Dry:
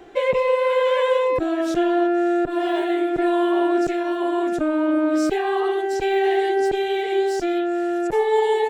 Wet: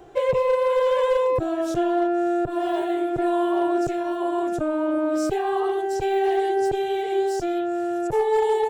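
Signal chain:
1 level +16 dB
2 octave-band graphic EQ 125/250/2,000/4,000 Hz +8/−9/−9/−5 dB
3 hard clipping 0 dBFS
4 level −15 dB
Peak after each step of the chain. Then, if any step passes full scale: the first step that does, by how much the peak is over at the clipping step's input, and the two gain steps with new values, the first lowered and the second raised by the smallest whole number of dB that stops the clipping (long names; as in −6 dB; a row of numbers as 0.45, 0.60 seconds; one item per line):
+6.0, +4.0, 0.0, −15.0 dBFS
step 1, 4.0 dB
step 1 +12 dB, step 4 −11 dB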